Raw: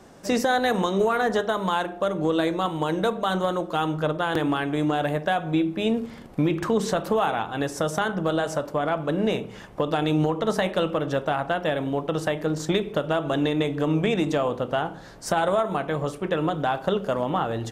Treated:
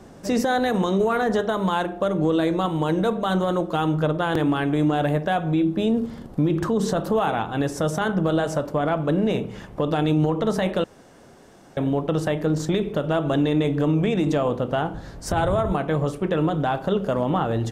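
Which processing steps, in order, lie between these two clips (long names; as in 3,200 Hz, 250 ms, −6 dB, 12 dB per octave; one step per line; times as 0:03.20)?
0:14.93–0:15.72: sub-octave generator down 2 octaves, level 0 dB
low-shelf EQ 410 Hz +7.5 dB
brickwall limiter −13 dBFS, peak gain reduction 7 dB
0:05.64–0:07.15: parametric band 2,300 Hz −7 dB 0.49 octaves
0:10.84–0:11.77: fill with room tone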